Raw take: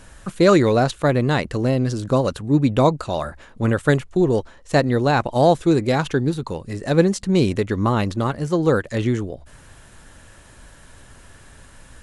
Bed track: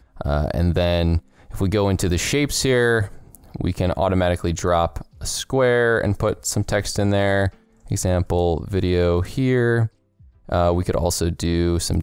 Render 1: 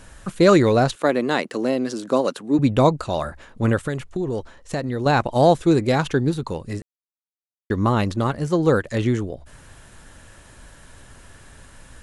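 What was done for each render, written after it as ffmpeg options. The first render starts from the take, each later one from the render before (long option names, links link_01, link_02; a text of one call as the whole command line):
ffmpeg -i in.wav -filter_complex "[0:a]asettb=1/sr,asplit=3[link_01][link_02][link_03];[link_01]atrim=end=0.954[link_04];[link_02]atrim=start=0.95:end=2.59,asetpts=PTS-STARTPTS,afade=type=in:duration=0.004:curve=qsin,afade=type=out:start_time=1.636:duration=0.004:curve=qsin,highpass=frequency=220:width=0.5412,highpass=frequency=220:width=1.3066[link_05];[link_03]atrim=start=2.586[link_06];[link_04][link_05]acrossfade=duration=0.004:curve1=hsin:curve2=qsin[link_07];[link_07][link_06]acrossfade=duration=0.004:curve1=qsin:curve2=hsin,asettb=1/sr,asplit=3[link_08][link_09][link_10];[link_08]atrim=end=3.814[link_11];[link_09]atrim=start=3.81:end=5.06,asetpts=PTS-STARTPTS,afade=type=in:duration=0.004:curve=qsin,afade=type=out:start_time=1.246:duration=0.004:curve=qsin,acompressor=threshold=-21dB:ratio=6:attack=3.2:release=140:knee=1:detection=peak[link_12];[link_10]atrim=start=5.056[link_13];[link_11][link_12]acrossfade=duration=0.004:curve1=hsin:curve2=qsin[link_14];[link_14][link_13]acrossfade=duration=0.004:curve1=qsin:curve2=hsin,asplit=3[link_15][link_16][link_17];[link_15]atrim=end=6.82,asetpts=PTS-STARTPTS,afade=type=out:start_time=6.816:duration=0.004:curve=hsin[link_18];[link_16]atrim=start=6.82:end=7.7,asetpts=PTS-STARTPTS,volume=0[link_19];[link_17]atrim=start=7.7,asetpts=PTS-STARTPTS,afade=type=in:duration=0.004:curve=hsin[link_20];[link_18][link_19][link_20]concat=n=3:v=0:a=1" out.wav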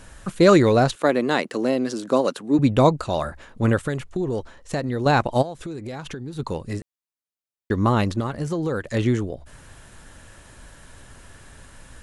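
ffmpeg -i in.wav -filter_complex "[0:a]asplit=3[link_01][link_02][link_03];[link_01]afade=type=out:start_time=5.41:duration=0.02[link_04];[link_02]acompressor=threshold=-29dB:ratio=12:attack=3.2:release=140:knee=1:detection=peak,afade=type=in:start_time=5.41:duration=0.02,afade=type=out:start_time=6.38:duration=0.02[link_05];[link_03]afade=type=in:start_time=6.38:duration=0.02[link_06];[link_04][link_05][link_06]amix=inputs=3:normalize=0,asettb=1/sr,asplit=3[link_07][link_08][link_09];[link_07]atrim=end=8.204[link_10];[link_08]atrim=start=8.2:end=8.87,asetpts=PTS-STARTPTS,afade=type=in:duration=0.004:curve=qsin,afade=type=out:start_time=0.666:duration=0.004:curve=qsin,acompressor=threshold=-21dB:ratio=6:attack=3.2:release=140:knee=1:detection=peak[link_11];[link_09]atrim=start=8.866[link_12];[link_10][link_11]acrossfade=duration=0.004:curve1=hsin:curve2=qsin[link_13];[link_13][link_12]acrossfade=duration=0.004:curve1=qsin:curve2=hsin" out.wav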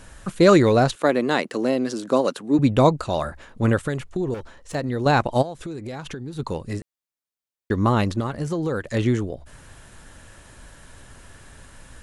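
ffmpeg -i in.wav -filter_complex "[0:a]asettb=1/sr,asplit=3[link_01][link_02][link_03];[link_01]atrim=end=4.344[link_04];[link_02]atrim=start=4.34:end=4.75,asetpts=PTS-STARTPTS,afade=type=in:duration=0.004:curve=qsin,afade=type=out:start_time=0.406:duration=0.004:curve=qsin,asoftclip=type=hard:threshold=-30dB[link_05];[link_03]atrim=start=4.746[link_06];[link_04][link_05]acrossfade=duration=0.004:curve1=hsin:curve2=qsin[link_07];[link_07][link_06]acrossfade=duration=0.004:curve1=qsin:curve2=hsin" out.wav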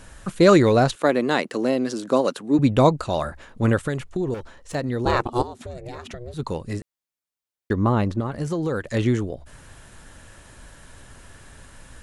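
ffmpeg -i in.wav -filter_complex "[0:a]asettb=1/sr,asplit=3[link_01][link_02][link_03];[link_01]atrim=end=5.054[link_04];[link_02]atrim=start=5.05:end=6.34,asetpts=PTS-STARTPTS,afade=type=in:duration=0.004:curve=qsin,afade=type=out:start_time=1.286:duration=0.004:curve=qsin,aeval=exprs='val(0)*sin(2*PI*240*n/s)':channel_layout=same[link_05];[link_03]atrim=start=6.336[link_06];[link_04][link_05]acrossfade=duration=0.004:curve1=hsin:curve2=qsin[link_07];[link_07][link_06]acrossfade=duration=0.004:curve1=qsin:curve2=hsin,asettb=1/sr,asplit=3[link_08][link_09][link_10];[link_08]atrim=end=7.734[link_11];[link_09]atrim=start=7.73:end=8.32,asetpts=PTS-STARTPTS,afade=type=in:duration=0.004:curve=qsin,afade=type=out:start_time=0.586:duration=0.004:curve=qsin,highshelf=frequency=2100:gain=-11[link_12];[link_10]atrim=start=8.316[link_13];[link_11][link_12]acrossfade=duration=0.004:curve1=hsin:curve2=qsin[link_14];[link_14][link_13]acrossfade=duration=0.004:curve1=qsin:curve2=hsin" out.wav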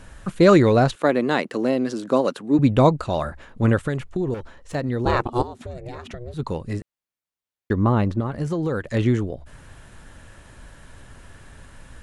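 ffmpeg -i in.wav -af "bass=frequency=250:gain=2,treble=frequency=4000:gain=-5" out.wav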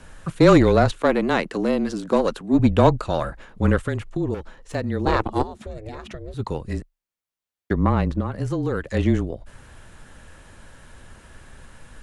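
ffmpeg -i in.wav -af "aeval=exprs='0.75*(cos(1*acos(clip(val(0)/0.75,-1,1)))-cos(1*PI/2))+0.0422*(cos(6*acos(clip(val(0)/0.75,-1,1)))-cos(6*PI/2))':channel_layout=same,afreqshift=-24" out.wav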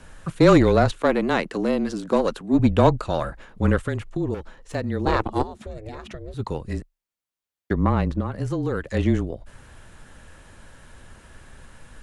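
ffmpeg -i in.wav -af "volume=-1dB" out.wav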